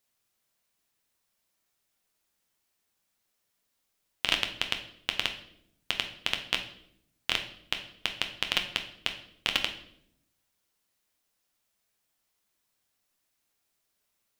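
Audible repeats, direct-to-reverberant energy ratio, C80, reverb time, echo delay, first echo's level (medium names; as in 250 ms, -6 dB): no echo, 4.5 dB, 13.5 dB, 0.70 s, no echo, no echo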